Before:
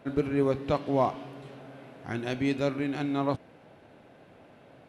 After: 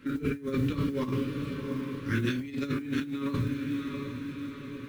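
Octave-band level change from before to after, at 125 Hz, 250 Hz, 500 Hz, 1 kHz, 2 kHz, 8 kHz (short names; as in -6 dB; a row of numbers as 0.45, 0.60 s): +3.5 dB, +1.5 dB, -7.0 dB, -9.5 dB, +1.5 dB, n/a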